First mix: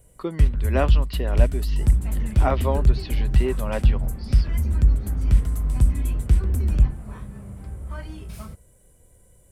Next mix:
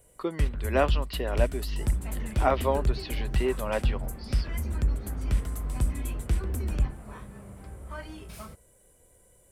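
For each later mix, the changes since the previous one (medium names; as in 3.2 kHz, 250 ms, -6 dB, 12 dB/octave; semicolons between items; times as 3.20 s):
master: add tone controls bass -9 dB, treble -1 dB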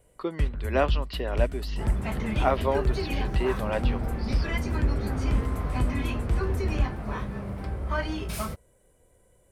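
first sound: add treble shelf 4.4 kHz -9.5 dB; second sound +11.0 dB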